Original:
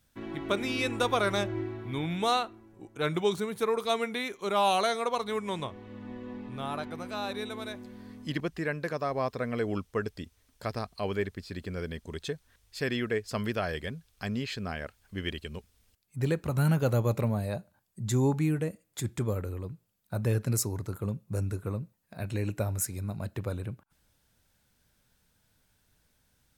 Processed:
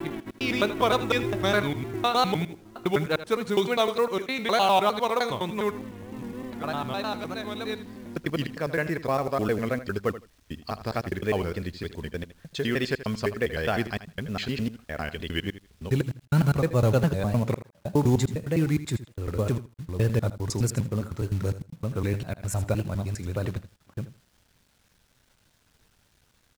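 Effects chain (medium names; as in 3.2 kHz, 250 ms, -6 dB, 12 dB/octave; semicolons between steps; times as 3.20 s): slices played last to first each 102 ms, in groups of 4; low-pass 6.1 kHz 12 dB/octave; companded quantiser 6-bit; vibrato 3.3 Hz 85 cents; feedback delay 80 ms, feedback 17%, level -14 dB; trim +4.5 dB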